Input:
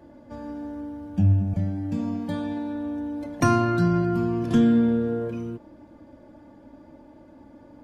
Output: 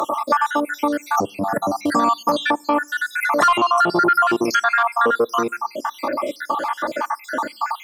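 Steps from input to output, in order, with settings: random holes in the spectrogram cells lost 69%; in parallel at +0.5 dB: compression, threshold -35 dBFS, peak gain reduction 17 dB; on the sum: sine folder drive 4 dB, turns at -9 dBFS; high-pass 700 Hz 12 dB/octave; peaking EQ 1.2 kHz +14.5 dB 0.5 oct; on a send at -23 dB: reverberation RT60 0.50 s, pre-delay 3 ms; on the sum: saturation -10.5 dBFS, distortion -14 dB; treble shelf 6.7 kHz +7 dB; loudness maximiser +20.5 dB; three bands compressed up and down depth 70%; trim -7.5 dB

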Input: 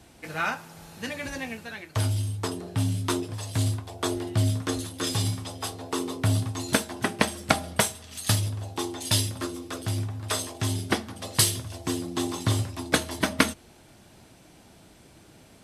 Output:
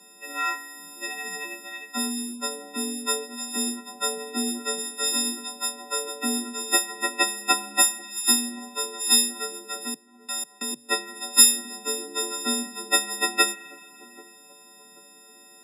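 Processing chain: partials quantised in pitch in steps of 6 st; spring tank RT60 2.5 s, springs 33 ms, chirp 55 ms, DRR 15.5 dB; 9.87–10.89 s: level held to a coarse grid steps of 24 dB; frequency shift +130 Hz; spectral gate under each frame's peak -30 dB strong; on a send: feedback echo behind a low-pass 785 ms, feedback 42%, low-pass 780 Hz, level -19 dB; on the sum: trim -5.5 dB

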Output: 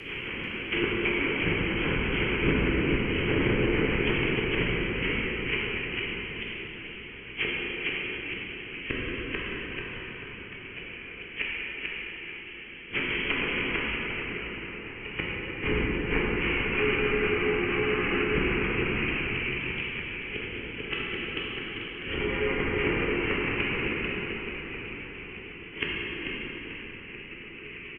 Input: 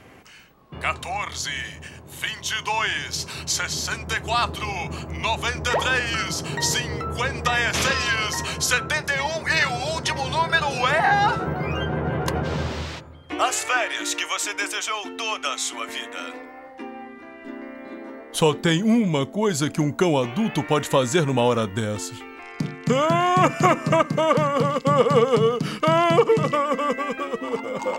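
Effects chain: spectral contrast reduction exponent 0.42; frequency inversion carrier 3.2 kHz; compression 16:1, threshold -27 dBFS, peak gain reduction 16 dB; inverted gate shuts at -23 dBFS, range -34 dB; frequency-shifting echo 440 ms, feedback 53%, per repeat -67 Hz, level -5 dB; low-pass that closes with the level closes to 1.3 kHz, closed at -36.5 dBFS; resonant low shelf 510 Hz +7.5 dB, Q 3; rotary cabinet horn 6.3 Hz; peaking EQ 2.3 kHz +14 dB 0.54 oct; plate-style reverb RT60 4.5 s, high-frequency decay 0.6×, DRR -6.5 dB; trim +5.5 dB

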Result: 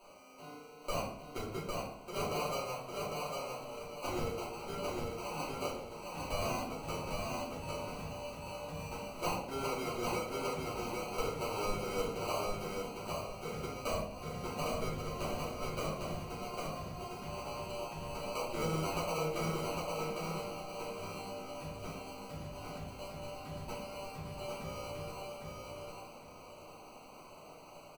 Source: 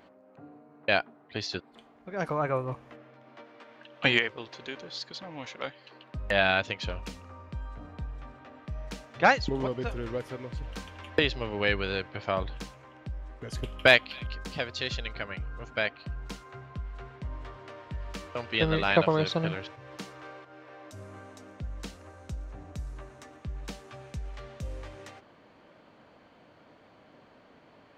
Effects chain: low-pass 1.1 kHz 24 dB/octave; differentiator; compression 12:1, threshold -57 dBFS, peak gain reduction 20.5 dB; sample-and-hold 25×; feedback delay 803 ms, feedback 28%, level -3 dB; simulated room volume 110 m³, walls mixed, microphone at 2.8 m; trim +14 dB

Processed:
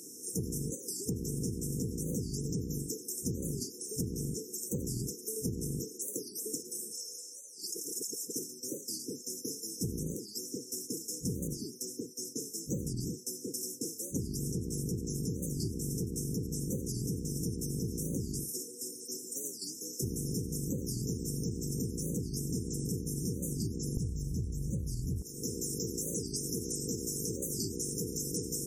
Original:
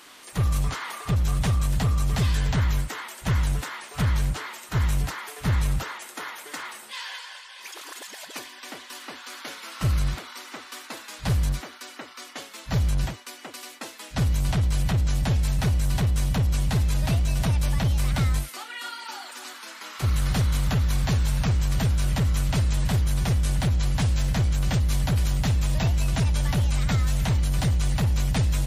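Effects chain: octave divider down 1 oct, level -2 dB; FFT band-reject 500–5200 Hz; high-pass 210 Hz 12 dB/octave, from 23.97 s 76 Hz, from 25.22 s 420 Hz; compression 12:1, threshold -38 dBFS, peak gain reduction 20 dB; warped record 45 rpm, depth 250 cents; trim +6.5 dB

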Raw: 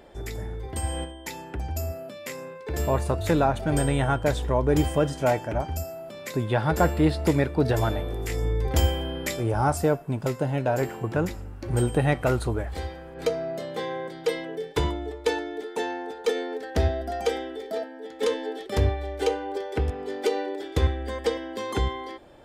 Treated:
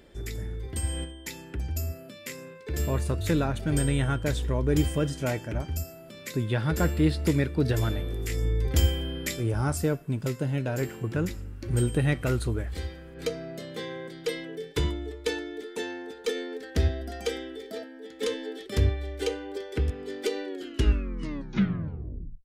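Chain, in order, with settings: tape stop on the ending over 1.98 s; peaking EQ 790 Hz -13 dB 1.2 oct

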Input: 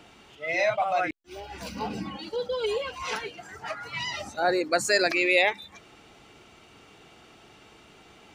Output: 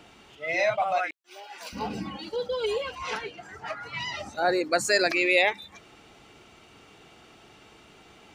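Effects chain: 0.98–1.73 s: high-pass 690 Hz 12 dB/octave; 2.95–4.33 s: treble shelf 6.9 kHz -9.5 dB

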